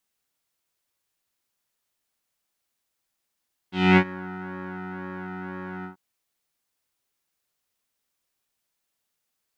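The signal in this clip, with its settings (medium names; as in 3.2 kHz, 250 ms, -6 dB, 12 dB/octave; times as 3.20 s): synth patch with pulse-width modulation F#3, oscillator 2 square, interval +7 st, filter lowpass, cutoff 1.2 kHz, filter envelope 1.5 oct, filter decay 0.44 s, filter sustain 25%, attack 247 ms, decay 0.07 s, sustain -21.5 dB, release 0.12 s, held 2.12 s, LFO 2 Hz, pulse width 30%, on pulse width 4%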